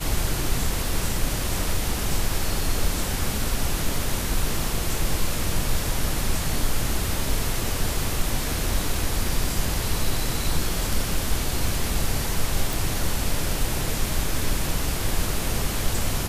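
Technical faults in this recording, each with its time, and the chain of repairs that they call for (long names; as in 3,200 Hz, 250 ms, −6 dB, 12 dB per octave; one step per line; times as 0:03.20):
0:12.73: click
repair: click removal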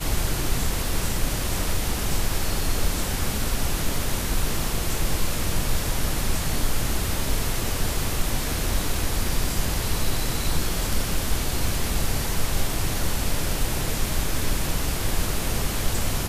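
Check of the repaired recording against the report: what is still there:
none of them is left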